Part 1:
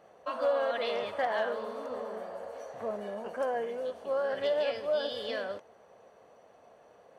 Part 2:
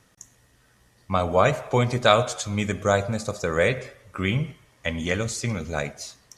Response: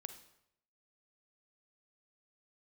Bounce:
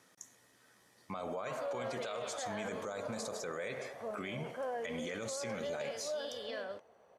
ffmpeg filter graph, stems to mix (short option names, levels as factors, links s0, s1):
-filter_complex "[0:a]adelay=1200,volume=0.501[s0];[1:a]bandreject=f=2800:w=13,acompressor=threshold=0.0562:ratio=6,highpass=240,volume=0.668[s1];[s0][s1]amix=inputs=2:normalize=0,alimiter=level_in=2.24:limit=0.0631:level=0:latency=1:release=25,volume=0.447"